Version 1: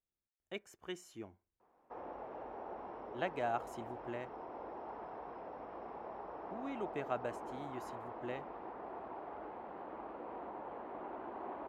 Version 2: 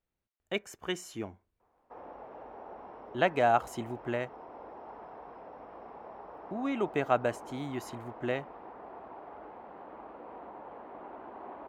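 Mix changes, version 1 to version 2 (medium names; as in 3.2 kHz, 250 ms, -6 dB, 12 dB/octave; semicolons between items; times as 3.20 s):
speech +11.5 dB; master: add peaking EQ 350 Hz -3.5 dB 0.24 oct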